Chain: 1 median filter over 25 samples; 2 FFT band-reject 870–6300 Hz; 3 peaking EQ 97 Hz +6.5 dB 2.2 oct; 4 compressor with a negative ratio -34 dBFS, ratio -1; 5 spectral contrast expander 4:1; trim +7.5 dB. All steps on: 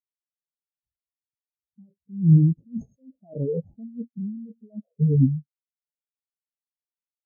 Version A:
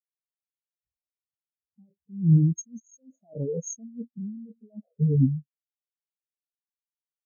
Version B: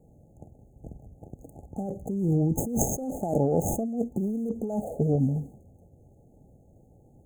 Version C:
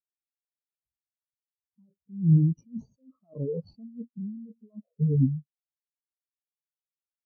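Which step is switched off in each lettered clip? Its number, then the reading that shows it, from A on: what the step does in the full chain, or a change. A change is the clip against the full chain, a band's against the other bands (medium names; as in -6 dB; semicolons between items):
1, loudness change -3.5 LU; 5, loudness change -5.5 LU; 2, loudness change -4.5 LU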